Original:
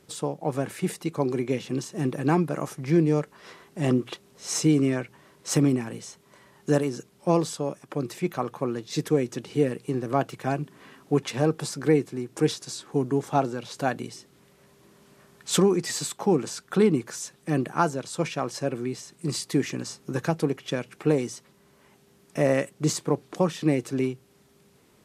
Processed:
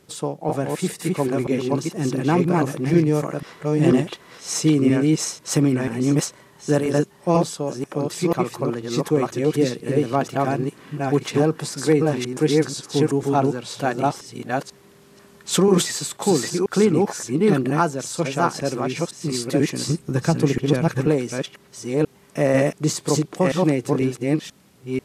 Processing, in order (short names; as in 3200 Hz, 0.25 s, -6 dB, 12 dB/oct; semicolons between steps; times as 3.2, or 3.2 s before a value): reverse delay 0.49 s, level -1 dB; 19.89–21.07 low shelf 140 Hz +11.5 dB; gain +3 dB